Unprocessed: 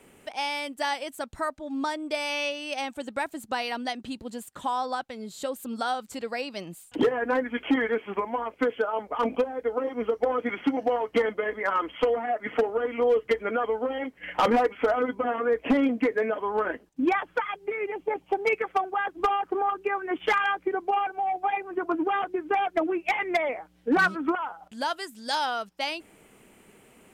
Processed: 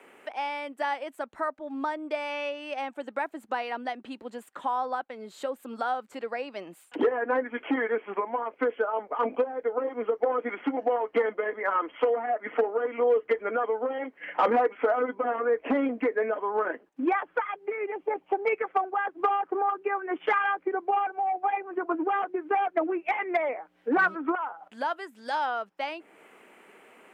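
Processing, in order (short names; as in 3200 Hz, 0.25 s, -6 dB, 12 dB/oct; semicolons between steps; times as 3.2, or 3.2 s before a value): three-band isolator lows -22 dB, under 250 Hz, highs -18 dB, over 2400 Hz; mismatched tape noise reduction encoder only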